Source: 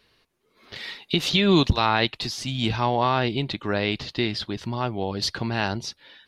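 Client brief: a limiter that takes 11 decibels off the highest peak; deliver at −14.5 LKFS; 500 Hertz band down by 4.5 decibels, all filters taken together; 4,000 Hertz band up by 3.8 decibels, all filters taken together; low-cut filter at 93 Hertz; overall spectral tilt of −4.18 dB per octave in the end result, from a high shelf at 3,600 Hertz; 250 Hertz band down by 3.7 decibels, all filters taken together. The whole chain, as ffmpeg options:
ffmpeg -i in.wav -af "highpass=93,equalizer=frequency=250:width_type=o:gain=-3.5,equalizer=frequency=500:width_type=o:gain=-5,highshelf=frequency=3600:gain=-6.5,equalizer=frequency=4000:width_type=o:gain=8.5,volume=14dB,alimiter=limit=-2dB:level=0:latency=1" out.wav

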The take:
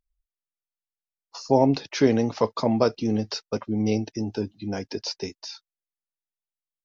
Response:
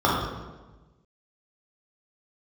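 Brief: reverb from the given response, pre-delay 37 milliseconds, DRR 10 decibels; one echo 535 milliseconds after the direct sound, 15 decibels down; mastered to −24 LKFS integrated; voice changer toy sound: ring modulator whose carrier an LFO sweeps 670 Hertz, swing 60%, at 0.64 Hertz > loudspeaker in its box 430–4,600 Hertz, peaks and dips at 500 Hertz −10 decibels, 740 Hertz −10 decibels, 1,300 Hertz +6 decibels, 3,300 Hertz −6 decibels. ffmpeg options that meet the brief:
-filter_complex "[0:a]aecho=1:1:535:0.178,asplit=2[link_01][link_02];[1:a]atrim=start_sample=2205,adelay=37[link_03];[link_02][link_03]afir=irnorm=-1:irlink=0,volume=-30.5dB[link_04];[link_01][link_04]amix=inputs=2:normalize=0,aeval=exprs='val(0)*sin(2*PI*670*n/s+670*0.6/0.64*sin(2*PI*0.64*n/s))':channel_layout=same,highpass=430,equalizer=frequency=500:width_type=q:width=4:gain=-10,equalizer=frequency=740:width_type=q:width=4:gain=-10,equalizer=frequency=1300:width_type=q:width=4:gain=6,equalizer=frequency=3300:width_type=q:width=4:gain=-6,lowpass=frequency=4600:width=0.5412,lowpass=frequency=4600:width=1.3066,volume=3.5dB"

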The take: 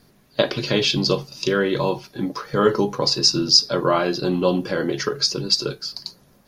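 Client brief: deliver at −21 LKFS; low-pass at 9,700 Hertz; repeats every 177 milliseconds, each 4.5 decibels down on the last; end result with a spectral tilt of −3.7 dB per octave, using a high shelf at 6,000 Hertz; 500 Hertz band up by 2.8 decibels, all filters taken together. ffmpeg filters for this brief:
ffmpeg -i in.wav -af "lowpass=9700,equalizer=frequency=500:width_type=o:gain=3.5,highshelf=frequency=6000:gain=-9,aecho=1:1:177|354|531|708|885|1062|1239|1416|1593:0.596|0.357|0.214|0.129|0.0772|0.0463|0.0278|0.0167|0.01,volume=-2.5dB" out.wav

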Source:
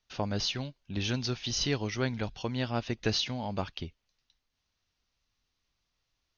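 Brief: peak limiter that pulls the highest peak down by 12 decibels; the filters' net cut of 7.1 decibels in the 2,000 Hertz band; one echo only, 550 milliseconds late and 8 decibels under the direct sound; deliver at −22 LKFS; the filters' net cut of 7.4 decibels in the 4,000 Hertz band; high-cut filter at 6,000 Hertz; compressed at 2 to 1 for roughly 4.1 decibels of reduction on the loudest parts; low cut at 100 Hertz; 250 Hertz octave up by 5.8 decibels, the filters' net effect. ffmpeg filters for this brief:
ffmpeg -i in.wav -af "highpass=100,lowpass=6000,equalizer=frequency=250:width_type=o:gain=7,equalizer=frequency=2000:width_type=o:gain=-8,equalizer=frequency=4000:width_type=o:gain=-6,acompressor=threshold=-29dB:ratio=2,alimiter=level_in=3.5dB:limit=-24dB:level=0:latency=1,volume=-3.5dB,aecho=1:1:550:0.398,volume=15.5dB" out.wav

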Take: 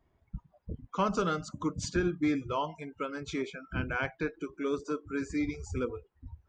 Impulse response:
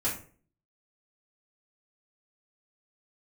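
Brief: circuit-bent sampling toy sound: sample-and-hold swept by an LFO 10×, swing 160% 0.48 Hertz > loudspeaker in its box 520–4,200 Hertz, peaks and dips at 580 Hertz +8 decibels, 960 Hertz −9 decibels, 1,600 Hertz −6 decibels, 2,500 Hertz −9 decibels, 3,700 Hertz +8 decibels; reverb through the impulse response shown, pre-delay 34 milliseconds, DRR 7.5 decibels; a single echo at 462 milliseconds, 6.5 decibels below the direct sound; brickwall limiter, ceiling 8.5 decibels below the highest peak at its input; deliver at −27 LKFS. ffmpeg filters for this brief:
-filter_complex "[0:a]alimiter=level_in=1.5dB:limit=-24dB:level=0:latency=1,volume=-1.5dB,aecho=1:1:462:0.473,asplit=2[link_01][link_02];[1:a]atrim=start_sample=2205,adelay=34[link_03];[link_02][link_03]afir=irnorm=-1:irlink=0,volume=-14.5dB[link_04];[link_01][link_04]amix=inputs=2:normalize=0,acrusher=samples=10:mix=1:aa=0.000001:lfo=1:lforange=16:lforate=0.48,highpass=520,equalizer=frequency=580:width_type=q:width=4:gain=8,equalizer=frequency=960:width_type=q:width=4:gain=-9,equalizer=frequency=1600:width_type=q:width=4:gain=-6,equalizer=frequency=2500:width_type=q:width=4:gain=-9,equalizer=frequency=3700:width_type=q:width=4:gain=8,lowpass=frequency=4200:width=0.5412,lowpass=frequency=4200:width=1.3066,volume=13dB"

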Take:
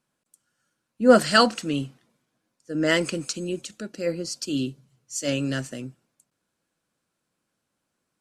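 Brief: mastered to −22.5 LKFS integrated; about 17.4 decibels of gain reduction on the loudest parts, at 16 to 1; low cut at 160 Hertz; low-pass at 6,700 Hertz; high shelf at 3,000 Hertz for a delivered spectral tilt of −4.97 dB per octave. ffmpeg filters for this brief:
ffmpeg -i in.wav -af "highpass=160,lowpass=6700,highshelf=frequency=3000:gain=-7.5,acompressor=threshold=-26dB:ratio=16,volume=11dB" out.wav

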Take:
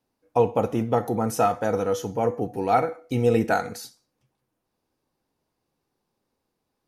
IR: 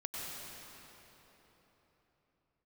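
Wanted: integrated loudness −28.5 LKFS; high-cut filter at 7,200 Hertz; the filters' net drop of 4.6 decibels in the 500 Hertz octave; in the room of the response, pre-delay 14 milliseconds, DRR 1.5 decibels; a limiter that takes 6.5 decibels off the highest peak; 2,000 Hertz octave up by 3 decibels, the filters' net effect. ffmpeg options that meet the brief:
-filter_complex "[0:a]lowpass=7200,equalizer=frequency=500:width_type=o:gain=-5.5,equalizer=frequency=2000:width_type=o:gain=5,alimiter=limit=-15dB:level=0:latency=1,asplit=2[link_01][link_02];[1:a]atrim=start_sample=2205,adelay=14[link_03];[link_02][link_03]afir=irnorm=-1:irlink=0,volume=-3.5dB[link_04];[link_01][link_04]amix=inputs=2:normalize=0,volume=-2dB"

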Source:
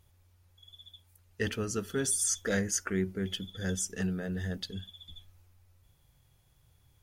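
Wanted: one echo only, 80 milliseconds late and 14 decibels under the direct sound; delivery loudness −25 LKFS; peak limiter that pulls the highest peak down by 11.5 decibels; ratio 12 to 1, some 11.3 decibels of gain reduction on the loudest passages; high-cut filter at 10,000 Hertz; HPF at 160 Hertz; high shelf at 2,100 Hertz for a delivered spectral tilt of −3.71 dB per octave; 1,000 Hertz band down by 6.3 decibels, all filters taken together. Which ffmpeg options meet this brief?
ffmpeg -i in.wav -af "highpass=160,lowpass=10000,equalizer=frequency=1000:width_type=o:gain=-8.5,highshelf=frequency=2100:gain=-5,acompressor=threshold=-39dB:ratio=12,alimiter=level_in=16.5dB:limit=-24dB:level=0:latency=1,volume=-16.5dB,aecho=1:1:80:0.2,volume=25dB" out.wav

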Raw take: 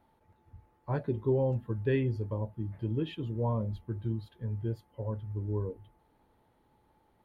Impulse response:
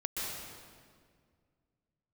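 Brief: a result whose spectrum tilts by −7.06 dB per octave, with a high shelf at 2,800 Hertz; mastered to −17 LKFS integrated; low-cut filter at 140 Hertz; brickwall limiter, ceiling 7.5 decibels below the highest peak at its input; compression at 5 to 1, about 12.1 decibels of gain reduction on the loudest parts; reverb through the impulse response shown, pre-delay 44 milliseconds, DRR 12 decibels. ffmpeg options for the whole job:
-filter_complex "[0:a]highpass=140,highshelf=frequency=2800:gain=5.5,acompressor=threshold=-38dB:ratio=5,alimiter=level_in=10dB:limit=-24dB:level=0:latency=1,volume=-10dB,asplit=2[link_01][link_02];[1:a]atrim=start_sample=2205,adelay=44[link_03];[link_02][link_03]afir=irnorm=-1:irlink=0,volume=-16dB[link_04];[link_01][link_04]amix=inputs=2:normalize=0,volume=28dB"

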